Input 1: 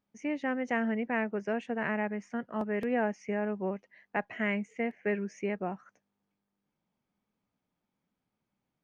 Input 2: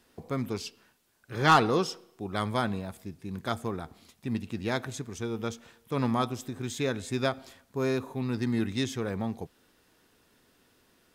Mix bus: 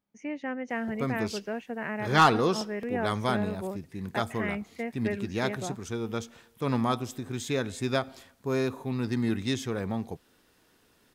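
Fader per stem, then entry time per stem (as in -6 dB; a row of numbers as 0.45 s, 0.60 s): -2.0 dB, +0.5 dB; 0.00 s, 0.70 s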